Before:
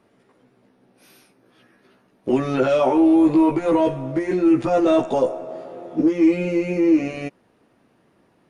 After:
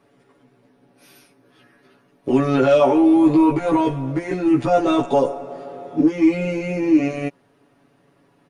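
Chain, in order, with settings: comb 7.1 ms, depth 75%

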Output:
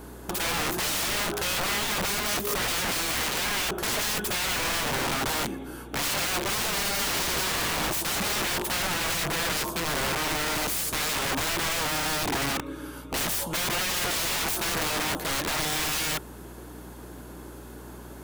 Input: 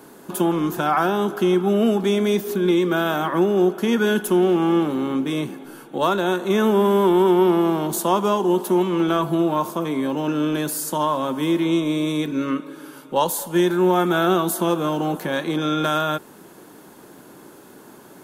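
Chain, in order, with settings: integer overflow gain 23 dB; hum 60 Hz, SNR 17 dB

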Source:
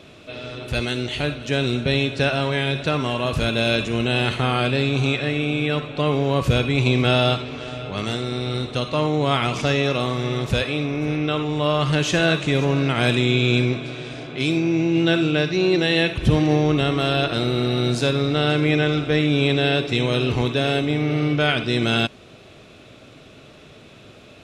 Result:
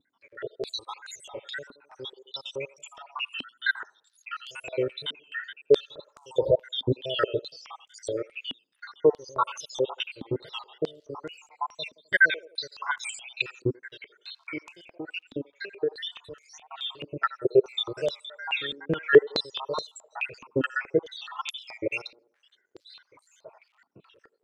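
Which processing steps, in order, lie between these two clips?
random holes in the spectrogram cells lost 84%; comb 2.1 ms, depth 97%; 14.87–17.22 s: compression 3:1, threshold -30 dBFS, peak gain reduction 13.5 dB; crackle 250 per s -55 dBFS; wow and flutter 130 cents; feedback echo behind a band-pass 86 ms, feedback 41%, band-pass 1.1 kHz, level -17 dB; step-sequenced band-pass 4.7 Hz 260–7200 Hz; trim +8.5 dB

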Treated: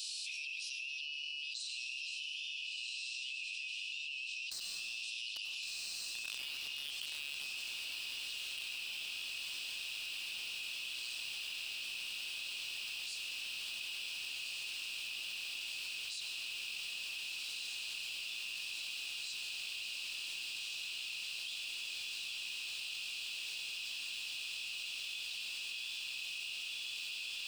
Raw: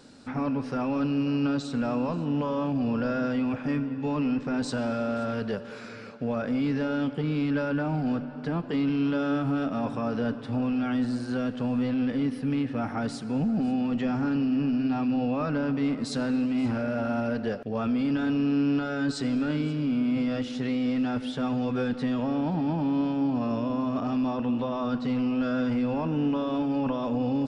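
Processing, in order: Doppler pass-by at 6.82 s, 9 m/s, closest 7.1 m; Chebyshev high-pass 2.5 kHz, order 8; random-step tremolo; in parallel at -3 dB: bit crusher 8-bit; on the sum: echo that smears into a reverb 1505 ms, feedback 79%, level -5.5 dB; on a send at -9 dB: reverberation RT60 1.3 s, pre-delay 86 ms; on the sum: level flattener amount 100%

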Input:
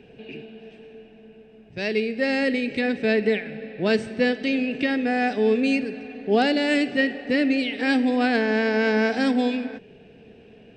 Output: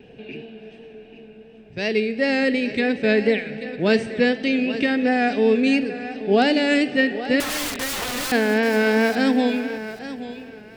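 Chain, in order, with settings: 7.40–8.32 s: integer overflow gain 25 dB; thinning echo 835 ms, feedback 22%, high-pass 170 Hz, level -12.5 dB; vibrato 2.8 Hz 41 cents; trim +2.5 dB

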